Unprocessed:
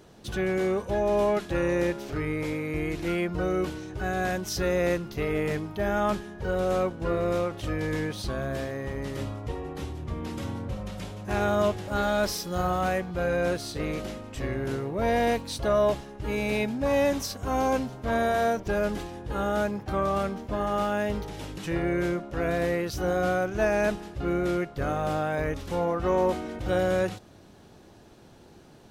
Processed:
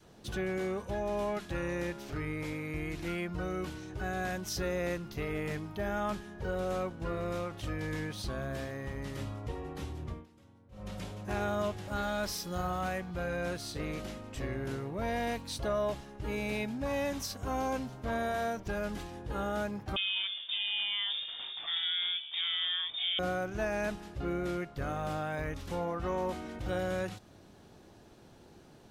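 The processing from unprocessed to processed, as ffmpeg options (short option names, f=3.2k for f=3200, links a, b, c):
-filter_complex "[0:a]asettb=1/sr,asplit=3[a][b][c];[a]atrim=end=19.964[d];[b]atrim=start=19.96:end=23.19,asetpts=PTS-STARTPTS,afade=t=in:d=0.004:c=qsin,afade=t=out:st=3.226:d=0.004:c=qsin,lowpass=f=3.1k:t=q:w=0.5098,lowpass=f=3.1k:t=q:w=0.6013,lowpass=f=3.1k:t=q:w=0.9,lowpass=f=3.1k:t=q:w=2.563,afreqshift=-3700[e];[c]atrim=start=23.186[f];[d][e]acrossfade=d=0.004:c1=hsin:c2=qsin[g];[g][f]acrossfade=d=0.004:c1=qsin:c2=hsin,asplit=3[h][i][j];[h]atrim=end=10.26,asetpts=PTS-STARTPTS,afade=t=out:st=10.06:d=0.2:silence=0.0749894[k];[i]atrim=start=10.26:end=10.71,asetpts=PTS-STARTPTS,volume=-22.5dB[l];[j]atrim=start=10.71,asetpts=PTS-STARTPTS,afade=t=in:d=0.2:silence=0.0749894[m];[k][l][m]concat=n=3:v=0:a=1,adynamicequalizer=threshold=0.01:dfrequency=450:dqfactor=1.1:tfrequency=450:tqfactor=1.1:attack=5:release=100:ratio=0.375:range=3:mode=cutabove:tftype=bell,acompressor=threshold=-30dB:ratio=1.5,volume=-4dB"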